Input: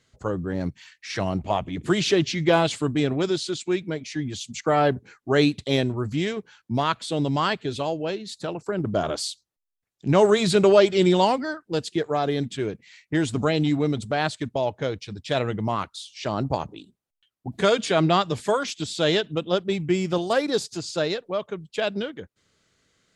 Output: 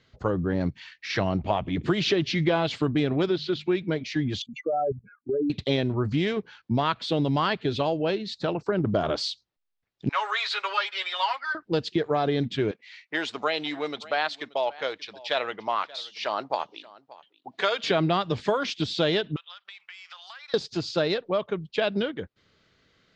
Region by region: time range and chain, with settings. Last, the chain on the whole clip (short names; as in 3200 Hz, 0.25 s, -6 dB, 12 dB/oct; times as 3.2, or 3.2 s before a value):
3.26–3.75 LPF 3600 Hz + notches 50/100/150/200 Hz
4.42–5.5 spectral contrast raised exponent 3.7 + air absorption 170 m + level quantiser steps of 14 dB
10.09–11.55 HPF 1100 Hz 24 dB/oct + high shelf 2300 Hz -9 dB + comb 7.2 ms, depth 97%
12.71–17.84 HPF 710 Hz + echo 0.58 s -21.5 dB
19.36–20.54 inverse Chebyshev high-pass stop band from 340 Hz, stop band 60 dB + compressor 16:1, threshold -43 dBFS
whole clip: LPF 4800 Hz 24 dB/oct; compressor 5:1, threshold -24 dBFS; gain +3.5 dB